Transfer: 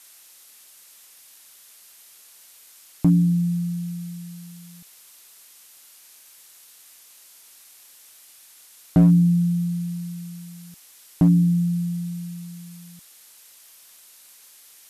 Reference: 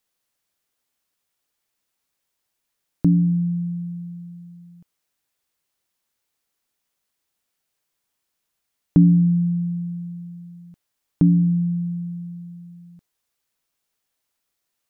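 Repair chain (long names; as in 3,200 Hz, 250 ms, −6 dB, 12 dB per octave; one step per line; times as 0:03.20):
clipped peaks rebuilt −9.5 dBFS
noise reduction from a noise print 28 dB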